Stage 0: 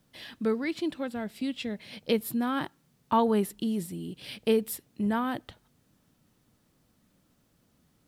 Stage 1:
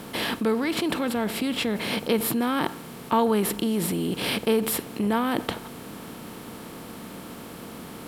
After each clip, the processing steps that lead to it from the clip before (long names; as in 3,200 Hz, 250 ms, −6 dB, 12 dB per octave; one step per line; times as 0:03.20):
compressor on every frequency bin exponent 0.6
in parallel at −1 dB: compressor whose output falls as the input rises −35 dBFS, ratio −1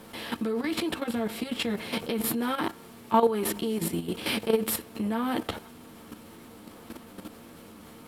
multi-voice chorus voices 6, 0.6 Hz, delay 11 ms, depth 2.3 ms
output level in coarse steps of 10 dB
level +2 dB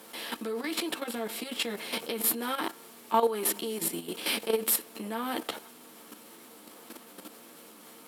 high-pass filter 300 Hz 12 dB per octave
high-shelf EQ 4,300 Hz +8 dB
level −2.5 dB